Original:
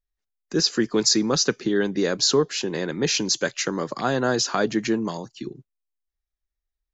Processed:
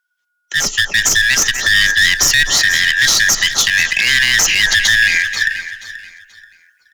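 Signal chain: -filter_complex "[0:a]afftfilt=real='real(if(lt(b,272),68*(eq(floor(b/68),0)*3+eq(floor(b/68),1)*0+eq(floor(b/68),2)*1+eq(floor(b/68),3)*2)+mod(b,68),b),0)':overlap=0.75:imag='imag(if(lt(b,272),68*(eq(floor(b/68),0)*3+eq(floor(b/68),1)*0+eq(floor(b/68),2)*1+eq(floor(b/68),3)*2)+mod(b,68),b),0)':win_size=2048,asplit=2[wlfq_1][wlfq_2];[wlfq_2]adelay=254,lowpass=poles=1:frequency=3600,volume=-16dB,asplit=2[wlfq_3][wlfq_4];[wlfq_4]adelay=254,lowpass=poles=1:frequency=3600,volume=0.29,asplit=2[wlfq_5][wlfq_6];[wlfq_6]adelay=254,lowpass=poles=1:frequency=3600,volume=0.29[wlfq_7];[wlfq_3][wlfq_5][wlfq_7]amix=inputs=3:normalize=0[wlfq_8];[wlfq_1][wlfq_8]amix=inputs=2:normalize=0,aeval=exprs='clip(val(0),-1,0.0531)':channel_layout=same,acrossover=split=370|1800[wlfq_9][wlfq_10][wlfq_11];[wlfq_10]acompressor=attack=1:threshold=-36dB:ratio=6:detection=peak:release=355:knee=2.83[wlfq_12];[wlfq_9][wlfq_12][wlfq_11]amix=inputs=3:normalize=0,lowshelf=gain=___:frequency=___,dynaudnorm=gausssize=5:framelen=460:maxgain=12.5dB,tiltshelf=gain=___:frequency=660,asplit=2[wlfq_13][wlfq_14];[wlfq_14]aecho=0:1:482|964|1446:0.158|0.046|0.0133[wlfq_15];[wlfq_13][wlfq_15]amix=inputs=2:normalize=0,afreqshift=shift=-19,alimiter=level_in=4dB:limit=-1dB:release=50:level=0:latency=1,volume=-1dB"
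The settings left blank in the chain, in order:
7, 240, -9.5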